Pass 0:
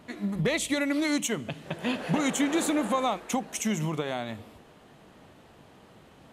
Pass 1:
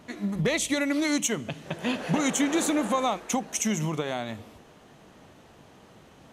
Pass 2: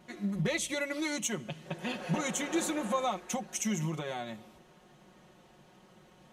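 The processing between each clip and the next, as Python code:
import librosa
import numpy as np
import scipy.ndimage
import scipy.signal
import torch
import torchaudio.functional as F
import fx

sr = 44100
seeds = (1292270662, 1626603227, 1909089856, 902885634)

y1 = fx.peak_eq(x, sr, hz=6100.0, db=6.0, octaves=0.35)
y1 = F.gain(torch.from_numpy(y1), 1.0).numpy()
y2 = y1 + 0.75 * np.pad(y1, (int(5.5 * sr / 1000.0), 0))[:len(y1)]
y2 = F.gain(torch.from_numpy(y2), -8.0).numpy()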